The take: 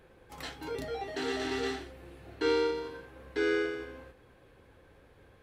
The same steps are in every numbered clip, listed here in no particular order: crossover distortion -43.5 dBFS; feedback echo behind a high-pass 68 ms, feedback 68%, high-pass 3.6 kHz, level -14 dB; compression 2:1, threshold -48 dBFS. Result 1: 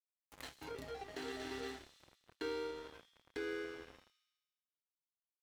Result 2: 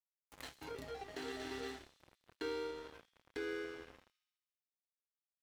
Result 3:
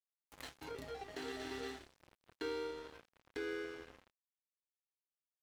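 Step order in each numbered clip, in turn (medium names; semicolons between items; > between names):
crossover distortion > feedback echo behind a high-pass > compression; crossover distortion > compression > feedback echo behind a high-pass; feedback echo behind a high-pass > crossover distortion > compression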